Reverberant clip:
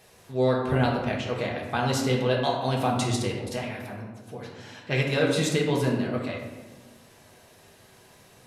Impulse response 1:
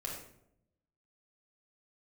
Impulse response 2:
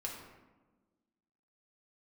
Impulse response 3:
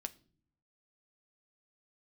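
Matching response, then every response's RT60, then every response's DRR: 2; 0.75 s, 1.3 s, non-exponential decay; −2.5, −2.5, 8.5 decibels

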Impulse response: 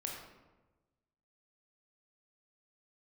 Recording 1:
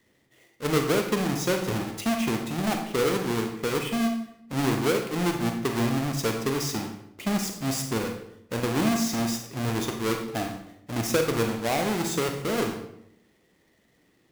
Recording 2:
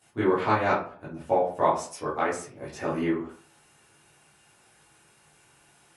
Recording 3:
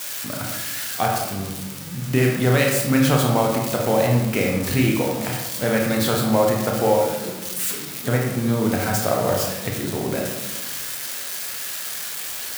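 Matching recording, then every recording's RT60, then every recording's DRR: 3; 0.80, 0.45, 1.2 seconds; 3.5, −11.5, −1.0 decibels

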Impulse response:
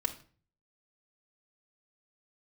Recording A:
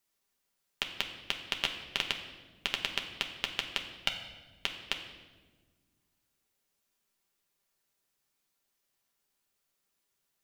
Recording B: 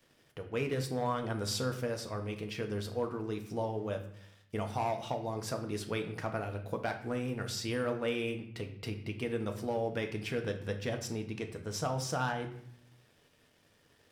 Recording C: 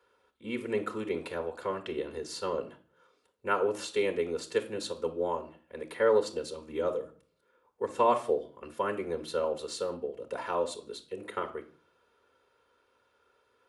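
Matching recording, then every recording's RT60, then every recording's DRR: C; 1.4, 0.65, 0.45 seconds; 2.0, 4.5, 4.5 decibels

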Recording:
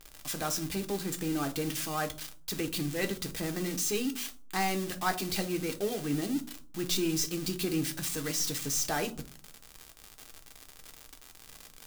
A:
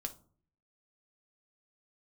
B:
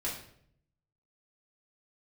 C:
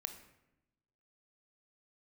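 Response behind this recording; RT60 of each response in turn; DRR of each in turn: A; 0.50, 0.65, 0.90 seconds; 5.0, −7.0, 7.5 decibels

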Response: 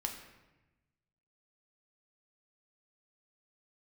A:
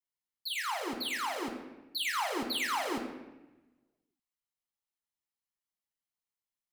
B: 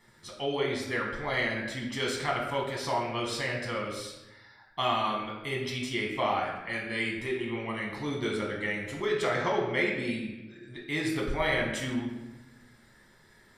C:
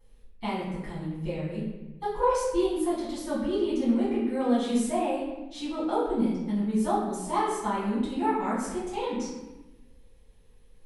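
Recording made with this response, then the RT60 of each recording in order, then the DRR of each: A; 1.1, 1.0, 1.0 seconds; 2.0, −2.5, −11.0 decibels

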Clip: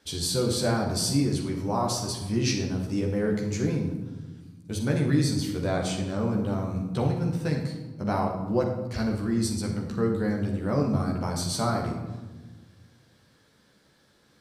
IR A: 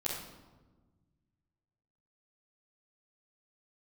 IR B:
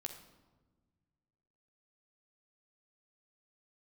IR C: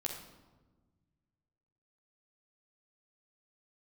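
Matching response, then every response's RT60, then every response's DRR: C; 1.3, 1.3, 1.3 seconds; −9.0, 3.5, −1.0 decibels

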